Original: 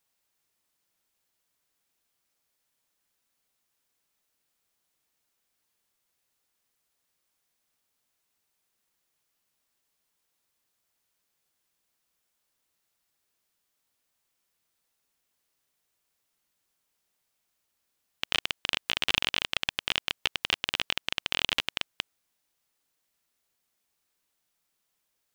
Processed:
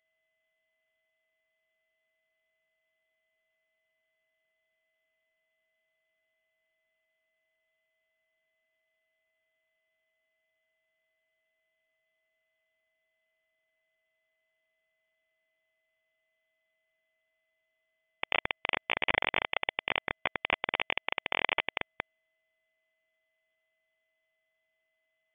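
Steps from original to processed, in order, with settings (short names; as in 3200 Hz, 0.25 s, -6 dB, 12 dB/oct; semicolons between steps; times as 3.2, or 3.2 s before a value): sample sorter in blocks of 32 samples; inverted band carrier 3400 Hz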